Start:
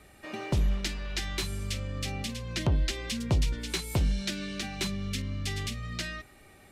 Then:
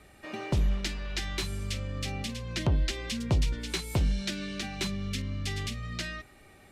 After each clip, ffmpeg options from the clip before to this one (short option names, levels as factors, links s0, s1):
-af "highshelf=f=9300:g=-5"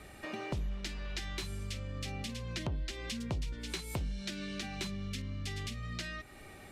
-af "acompressor=threshold=0.00562:ratio=2.5,volume=1.58"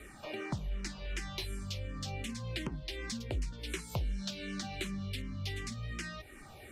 -filter_complex "[0:a]asplit=2[s0][s1];[s1]afreqshift=-2.7[s2];[s0][s2]amix=inputs=2:normalize=1,volume=1.41"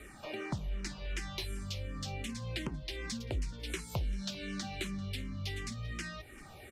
-af "aecho=1:1:392:0.0841"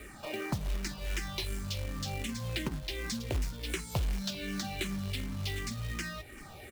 -af "acrusher=bits=3:mode=log:mix=0:aa=0.000001,volume=1.41"